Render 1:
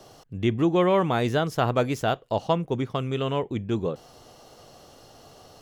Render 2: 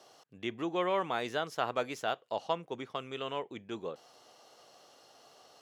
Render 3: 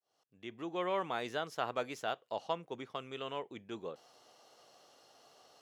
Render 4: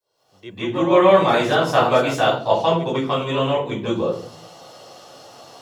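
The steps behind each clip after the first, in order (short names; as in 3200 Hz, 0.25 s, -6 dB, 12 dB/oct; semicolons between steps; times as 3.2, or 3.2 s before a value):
weighting filter A; gain -7 dB
opening faded in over 0.92 s; gain -3.5 dB
reverb RT60 0.50 s, pre-delay 0.146 s, DRR -11.5 dB; gain +4 dB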